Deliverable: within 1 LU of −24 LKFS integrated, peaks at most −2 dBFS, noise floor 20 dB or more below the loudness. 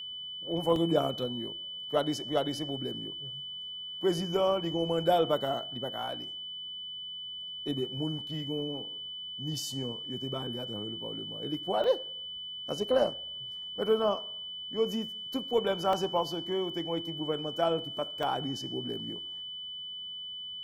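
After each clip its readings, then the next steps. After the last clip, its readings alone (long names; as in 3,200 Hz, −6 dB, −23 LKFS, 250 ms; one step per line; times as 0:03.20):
number of dropouts 4; longest dropout 1.7 ms; interfering tone 3,000 Hz; level of the tone −38 dBFS; integrated loudness −32.5 LKFS; sample peak −12.0 dBFS; target loudness −24.0 LKFS
→ repair the gap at 0:00.76/0:11.84/0:15.93/0:18.23, 1.7 ms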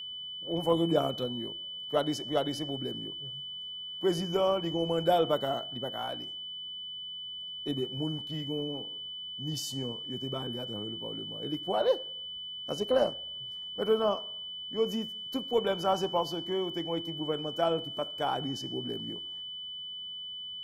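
number of dropouts 0; interfering tone 3,000 Hz; level of the tone −38 dBFS
→ notch filter 3,000 Hz, Q 30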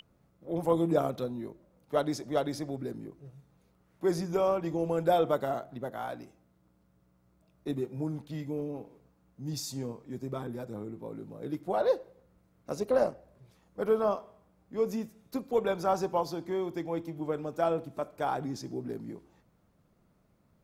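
interfering tone none found; integrated loudness −32.5 LKFS; sample peak −12.5 dBFS; target loudness −24.0 LKFS
→ level +8.5 dB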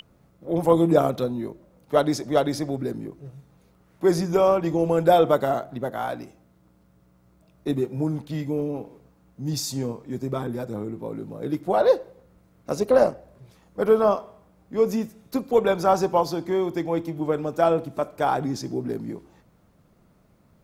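integrated loudness −24.0 LKFS; sample peak −4.0 dBFS; background noise floor −60 dBFS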